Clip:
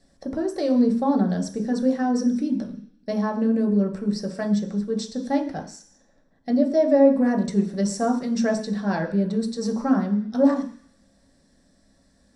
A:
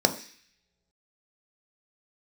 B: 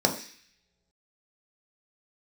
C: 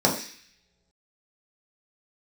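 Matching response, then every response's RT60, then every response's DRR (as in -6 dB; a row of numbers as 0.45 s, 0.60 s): B; no single decay rate, no single decay rate, no single decay rate; 5.5 dB, 1.5 dB, -3.5 dB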